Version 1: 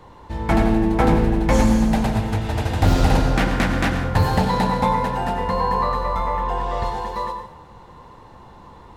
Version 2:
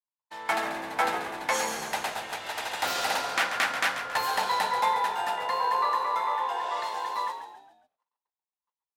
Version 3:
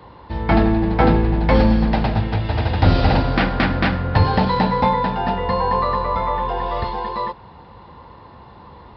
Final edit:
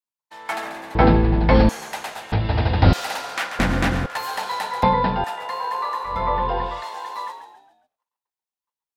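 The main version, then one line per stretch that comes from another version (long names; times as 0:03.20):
2
0:00.95–0:01.69: punch in from 3
0:02.32–0:02.93: punch in from 3
0:03.59–0:04.06: punch in from 1
0:04.83–0:05.24: punch in from 3
0:06.15–0:06.71: punch in from 3, crossfade 0.24 s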